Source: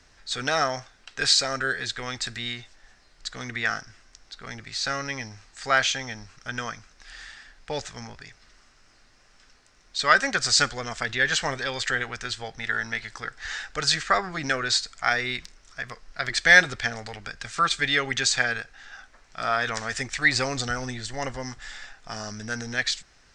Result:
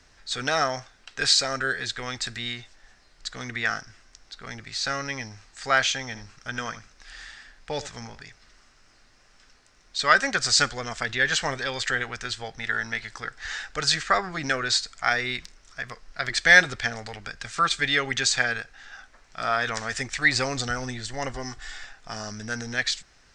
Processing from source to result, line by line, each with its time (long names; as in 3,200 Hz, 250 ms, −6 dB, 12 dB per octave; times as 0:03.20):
0:06.04–0:08.21: single-tap delay 77 ms −15 dB
0:21.33–0:21.84: comb filter 2.7 ms, depth 56%